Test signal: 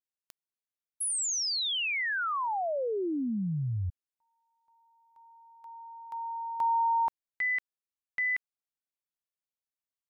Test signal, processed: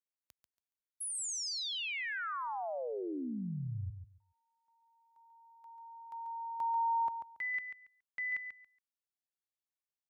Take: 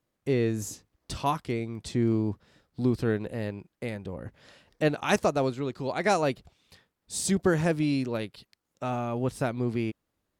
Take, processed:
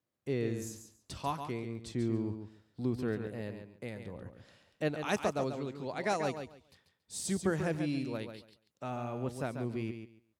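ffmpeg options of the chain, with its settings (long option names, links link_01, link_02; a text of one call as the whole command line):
ffmpeg -i in.wav -filter_complex "[0:a]highpass=frequency=54:width=0.5412,highpass=frequency=54:width=1.3066,asplit=2[link_01][link_02];[link_02]aecho=0:1:140|280|420:0.398|0.0756|0.0144[link_03];[link_01][link_03]amix=inputs=2:normalize=0,volume=-8dB" out.wav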